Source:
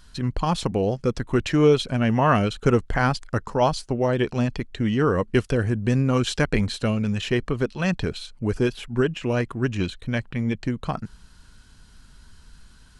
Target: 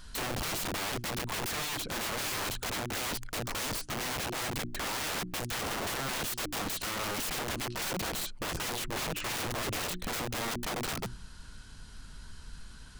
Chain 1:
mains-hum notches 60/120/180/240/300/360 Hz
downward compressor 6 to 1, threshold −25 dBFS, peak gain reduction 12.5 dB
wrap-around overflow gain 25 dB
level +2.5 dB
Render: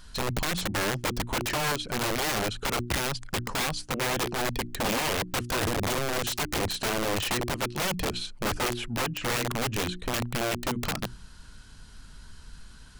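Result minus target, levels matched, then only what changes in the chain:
wrap-around overflow: distortion −13 dB
change: wrap-around overflow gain 32 dB

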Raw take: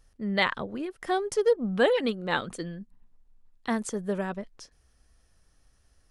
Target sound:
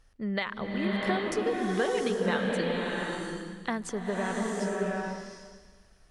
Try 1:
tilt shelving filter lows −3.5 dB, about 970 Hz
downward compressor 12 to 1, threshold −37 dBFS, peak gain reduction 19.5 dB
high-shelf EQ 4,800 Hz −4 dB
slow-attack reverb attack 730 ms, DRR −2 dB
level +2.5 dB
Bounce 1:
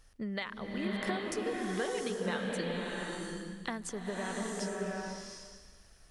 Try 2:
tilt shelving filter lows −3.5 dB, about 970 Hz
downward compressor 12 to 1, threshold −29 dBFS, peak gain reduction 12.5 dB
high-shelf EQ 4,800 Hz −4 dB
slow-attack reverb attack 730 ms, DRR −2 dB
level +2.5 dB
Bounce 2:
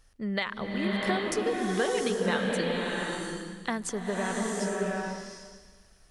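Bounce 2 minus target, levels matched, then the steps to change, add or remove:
8,000 Hz band +5.0 dB
change: high-shelf EQ 4,800 Hz −12 dB

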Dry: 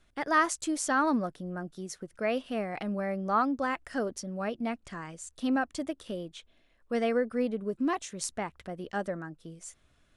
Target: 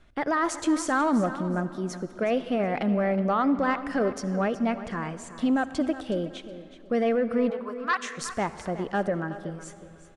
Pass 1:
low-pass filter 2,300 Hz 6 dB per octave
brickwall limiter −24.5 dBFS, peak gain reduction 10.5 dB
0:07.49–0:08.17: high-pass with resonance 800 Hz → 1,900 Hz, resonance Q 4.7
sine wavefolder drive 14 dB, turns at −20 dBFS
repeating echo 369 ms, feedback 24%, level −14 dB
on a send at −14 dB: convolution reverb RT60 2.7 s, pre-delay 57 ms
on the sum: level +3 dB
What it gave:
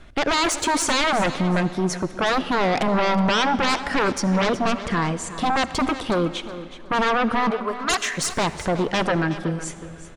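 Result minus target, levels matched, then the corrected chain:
sine wavefolder: distortion +29 dB
low-pass filter 2,300 Hz 6 dB per octave
brickwall limiter −24.5 dBFS, peak gain reduction 10.5 dB
0:07.49–0:08.17: high-pass with resonance 800 Hz → 1,900 Hz, resonance Q 4.7
sine wavefolder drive 2 dB, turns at −20 dBFS
repeating echo 369 ms, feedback 24%, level −14 dB
on a send at −14 dB: convolution reverb RT60 2.7 s, pre-delay 57 ms
on the sum: level +3 dB

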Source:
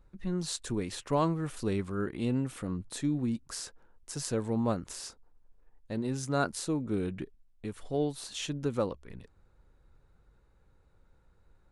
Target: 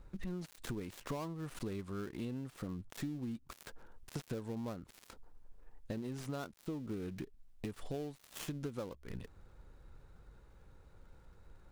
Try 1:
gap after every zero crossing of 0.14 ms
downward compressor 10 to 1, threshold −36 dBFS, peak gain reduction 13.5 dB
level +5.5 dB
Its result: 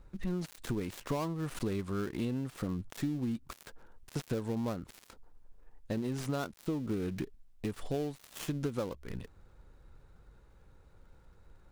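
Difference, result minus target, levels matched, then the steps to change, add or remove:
downward compressor: peak gain reduction −6.5 dB
change: downward compressor 10 to 1, threshold −43.5 dBFS, peak gain reduction 20.5 dB

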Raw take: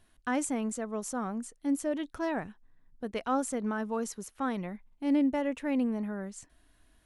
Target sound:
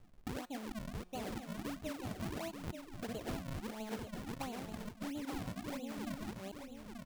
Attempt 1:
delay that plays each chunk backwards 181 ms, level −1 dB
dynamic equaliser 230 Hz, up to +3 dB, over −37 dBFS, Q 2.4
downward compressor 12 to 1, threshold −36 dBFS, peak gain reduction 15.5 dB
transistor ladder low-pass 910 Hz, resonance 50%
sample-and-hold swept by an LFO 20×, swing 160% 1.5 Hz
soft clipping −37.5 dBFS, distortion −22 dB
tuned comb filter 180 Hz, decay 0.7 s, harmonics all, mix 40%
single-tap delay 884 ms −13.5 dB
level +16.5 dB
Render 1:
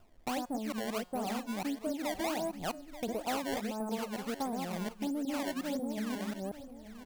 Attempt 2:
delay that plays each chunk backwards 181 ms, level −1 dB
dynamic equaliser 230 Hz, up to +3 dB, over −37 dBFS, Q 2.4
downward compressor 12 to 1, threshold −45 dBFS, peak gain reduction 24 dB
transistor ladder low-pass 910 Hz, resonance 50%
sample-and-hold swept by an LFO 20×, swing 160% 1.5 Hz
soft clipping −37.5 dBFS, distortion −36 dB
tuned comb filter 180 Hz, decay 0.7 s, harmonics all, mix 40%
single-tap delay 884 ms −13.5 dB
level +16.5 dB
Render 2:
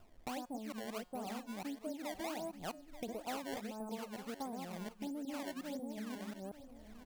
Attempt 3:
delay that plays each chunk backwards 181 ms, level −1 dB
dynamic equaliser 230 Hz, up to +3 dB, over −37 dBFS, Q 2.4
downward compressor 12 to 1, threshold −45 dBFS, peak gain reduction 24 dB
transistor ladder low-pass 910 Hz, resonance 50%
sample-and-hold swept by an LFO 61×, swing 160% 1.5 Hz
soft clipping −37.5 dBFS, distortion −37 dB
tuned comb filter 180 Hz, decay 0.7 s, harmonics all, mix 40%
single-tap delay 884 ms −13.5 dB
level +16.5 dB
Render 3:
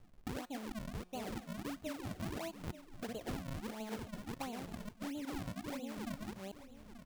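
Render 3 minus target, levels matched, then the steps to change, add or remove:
echo-to-direct −6.5 dB
change: single-tap delay 884 ms −7 dB

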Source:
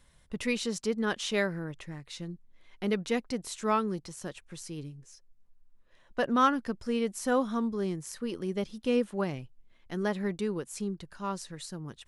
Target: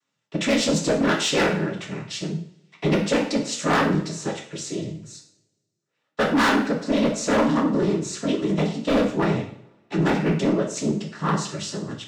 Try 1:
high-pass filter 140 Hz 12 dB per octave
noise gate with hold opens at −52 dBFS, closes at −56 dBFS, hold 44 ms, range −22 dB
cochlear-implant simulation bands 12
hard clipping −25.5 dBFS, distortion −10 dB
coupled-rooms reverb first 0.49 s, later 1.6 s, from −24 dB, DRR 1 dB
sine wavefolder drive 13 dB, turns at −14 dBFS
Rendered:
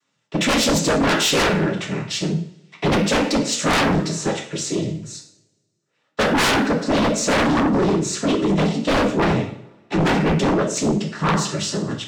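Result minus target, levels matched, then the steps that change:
sine wavefolder: distortion +14 dB
change: sine wavefolder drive 6 dB, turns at −14 dBFS

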